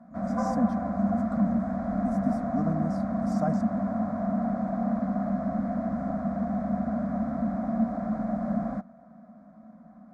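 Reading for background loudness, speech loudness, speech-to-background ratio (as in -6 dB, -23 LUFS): -29.0 LUFS, -32.5 LUFS, -3.5 dB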